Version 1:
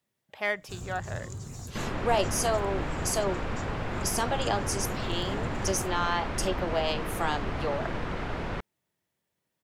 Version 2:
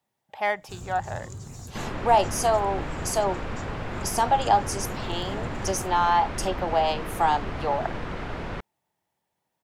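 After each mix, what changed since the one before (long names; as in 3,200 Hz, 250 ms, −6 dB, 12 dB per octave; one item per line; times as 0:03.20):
speech: add parametric band 830 Hz +13 dB 0.53 octaves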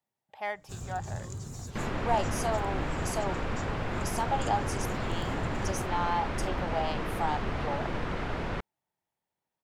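speech −9.0 dB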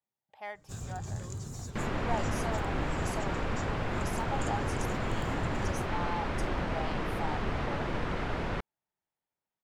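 speech −7.0 dB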